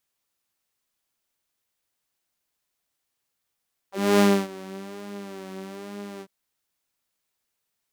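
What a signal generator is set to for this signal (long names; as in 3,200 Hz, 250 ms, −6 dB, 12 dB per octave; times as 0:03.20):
subtractive patch with vibrato G3, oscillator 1 saw, detune 21 cents, filter highpass, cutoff 220 Hz, Q 3, filter decay 0.06 s, filter sustain 15%, attack 274 ms, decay 0.28 s, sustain −22 dB, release 0.06 s, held 2.29 s, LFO 1.1 Hz, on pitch 58 cents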